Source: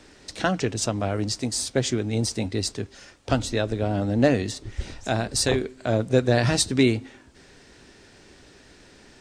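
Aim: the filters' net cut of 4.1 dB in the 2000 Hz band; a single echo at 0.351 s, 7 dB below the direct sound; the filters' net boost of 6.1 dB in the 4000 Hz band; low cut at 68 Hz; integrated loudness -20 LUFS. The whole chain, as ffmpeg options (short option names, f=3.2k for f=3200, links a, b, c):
-af "highpass=68,equalizer=f=2k:t=o:g=-8,equalizer=f=4k:t=o:g=9,aecho=1:1:351:0.447,volume=3dB"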